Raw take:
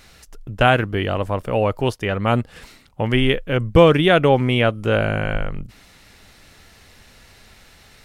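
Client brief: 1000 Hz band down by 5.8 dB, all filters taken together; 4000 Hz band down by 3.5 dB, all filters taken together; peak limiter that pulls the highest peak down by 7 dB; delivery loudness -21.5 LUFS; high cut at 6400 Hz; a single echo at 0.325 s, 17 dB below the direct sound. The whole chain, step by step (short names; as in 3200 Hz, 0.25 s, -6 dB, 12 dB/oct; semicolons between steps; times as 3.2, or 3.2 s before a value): LPF 6400 Hz; bell 1000 Hz -8.5 dB; bell 4000 Hz -4 dB; limiter -9.5 dBFS; echo 0.325 s -17 dB; gain +1 dB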